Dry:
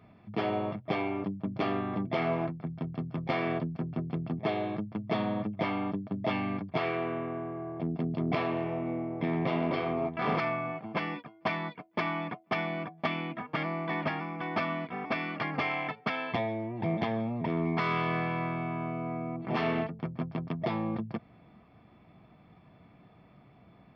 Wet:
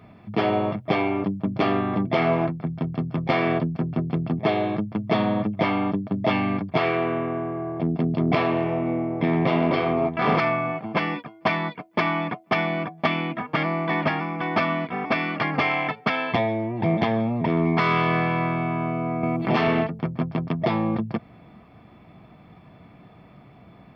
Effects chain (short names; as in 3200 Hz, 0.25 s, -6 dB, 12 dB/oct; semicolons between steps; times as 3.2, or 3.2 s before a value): 19.23–19.68 three-band squash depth 70%; gain +8.5 dB